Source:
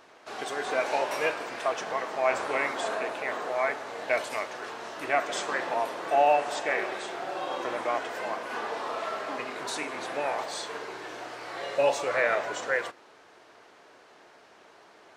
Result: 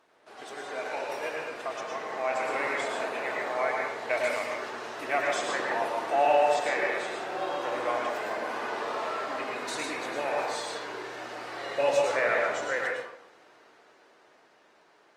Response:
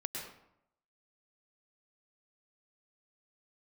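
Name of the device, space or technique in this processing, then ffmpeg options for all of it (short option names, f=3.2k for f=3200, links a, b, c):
far-field microphone of a smart speaker: -filter_complex "[1:a]atrim=start_sample=2205[a];[0:a][a]afir=irnorm=-1:irlink=0,highpass=f=120:p=1,dynaudnorm=f=430:g=11:m=7dB,volume=-7dB" -ar 48000 -c:a libopus -b:a 32k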